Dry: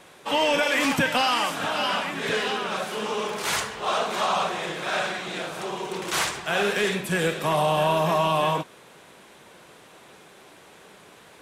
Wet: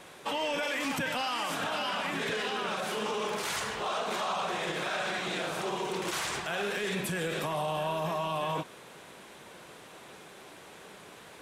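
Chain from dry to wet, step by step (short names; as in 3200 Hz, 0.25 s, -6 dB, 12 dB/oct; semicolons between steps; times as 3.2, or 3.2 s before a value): limiter -24 dBFS, peak gain reduction 11 dB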